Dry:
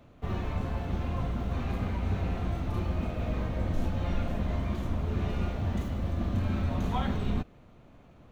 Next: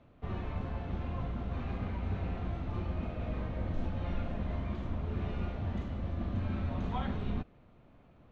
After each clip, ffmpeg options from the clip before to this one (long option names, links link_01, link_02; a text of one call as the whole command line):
ffmpeg -i in.wav -af "lowpass=3800,volume=-5dB" out.wav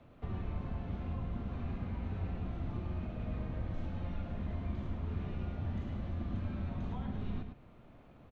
ffmpeg -i in.wav -filter_complex "[0:a]acrossover=split=310|810[link_01][link_02][link_03];[link_01]acompressor=threshold=-37dB:ratio=4[link_04];[link_02]acompressor=threshold=-57dB:ratio=4[link_05];[link_03]acompressor=threshold=-59dB:ratio=4[link_06];[link_04][link_05][link_06]amix=inputs=3:normalize=0,aecho=1:1:108:0.473,volume=2dB" out.wav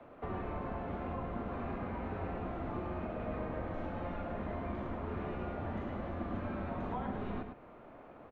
ffmpeg -i in.wav -filter_complex "[0:a]acrossover=split=300 2100:gain=0.158 1 0.158[link_01][link_02][link_03];[link_01][link_02][link_03]amix=inputs=3:normalize=0,volume=10dB" out.wav